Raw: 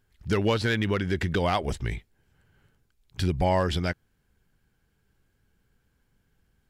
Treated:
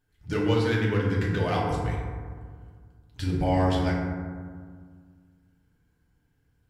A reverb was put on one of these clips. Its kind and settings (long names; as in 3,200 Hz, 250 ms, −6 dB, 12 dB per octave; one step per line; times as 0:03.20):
feedback delay network reverb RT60 1.8 s, low-frequency decay 1.4×, high-frequency decay 0.35×, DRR −5 dB
level −7.5 dB